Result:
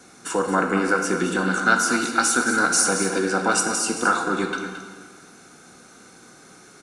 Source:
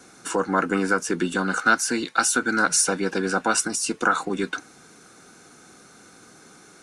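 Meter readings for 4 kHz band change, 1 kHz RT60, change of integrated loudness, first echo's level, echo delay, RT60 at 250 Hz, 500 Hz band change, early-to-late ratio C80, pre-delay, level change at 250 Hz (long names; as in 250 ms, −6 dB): +1.5 dB, 1.7 s, +1.5 dB, −10.0 dB, 221 ms, 1.7 s, +2.0 dB, 5.0 dB, 14 ms, +1.5 dB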